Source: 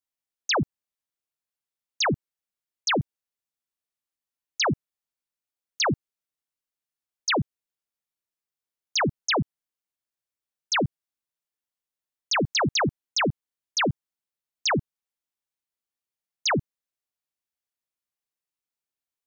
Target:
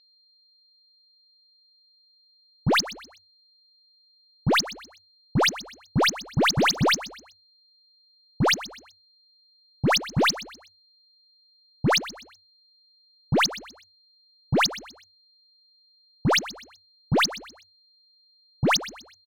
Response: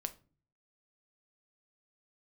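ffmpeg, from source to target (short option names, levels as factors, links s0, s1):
-filter_complex "[0:a]areverse,aeval=exprs='0.112*(cos(1*acos(clip(val(0)/0.112,-1,1)))-cos(1*PI/2))+0.00398*(cos(4*acos(clip(val(0)/0.112,-1,1)))-cos(4*PI/2))+0.01*(cos(7*acos(clip(val(0)/0.112,-1,1)))-cos(7*PI/2))':c=same,aeval=exprs='val(0)+0.00178*sin(2*PI*4200*n/s)':c=same,adynamicsmooth=sensitivity=7:basefreq=3600,asplit=4[s0][s1][s2][s3];[s1]adelay=125,afreqshift=31,volume=0.158[s4];[s2]adelay=250,afreqshift=62,volume=0.0556[s5];[s3]adelay=375,afreqshift=93,volume=0.0195[s6];[s0][s4][s5][s6]amix=inputs=4:normalize=0,volume=1.41"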